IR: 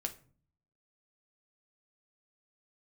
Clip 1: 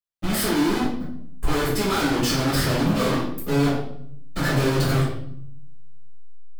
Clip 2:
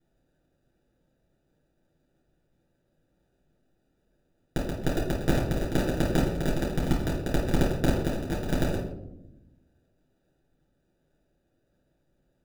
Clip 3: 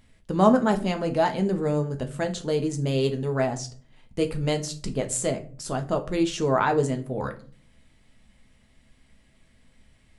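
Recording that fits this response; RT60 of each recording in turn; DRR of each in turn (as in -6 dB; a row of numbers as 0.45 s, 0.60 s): 3; 0.65 s, 0.90 s, 0.45 s; -9.5 dB, -6.0 dB, 5.0 dB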